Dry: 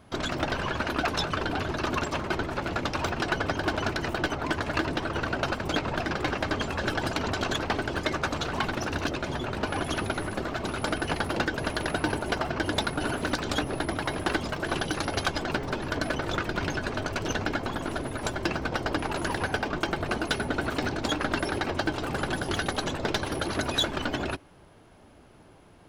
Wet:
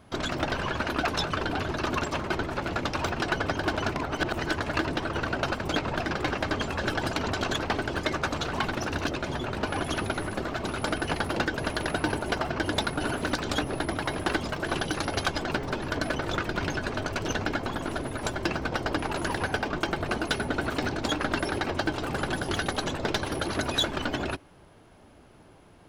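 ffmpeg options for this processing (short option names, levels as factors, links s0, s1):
-filter_complex "[0:a]asplit=3[s0][s1][s2];[s0]atrim=end=3.962[s3];[s1]atrim=start=3.958:end=4.512,asetpts=PTS-STARTPTS,areverse[s4];[s2]atrim=start=4.508[s5];[s3][s4]acrossfade=d=0.004:c1=hsin:c2=hsin[s6];[s6][s5]acrossfade=d=0.004:c1=hsin:c2=hsin"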